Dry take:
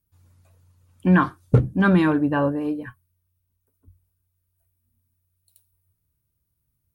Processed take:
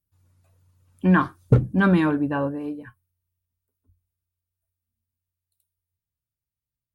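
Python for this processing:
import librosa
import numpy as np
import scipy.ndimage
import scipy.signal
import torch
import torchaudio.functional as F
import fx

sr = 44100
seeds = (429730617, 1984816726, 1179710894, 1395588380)

y = fx.doppler_pass(x, sr, speed_mps=6, closest_m=4.6, pass_at_s=1.52)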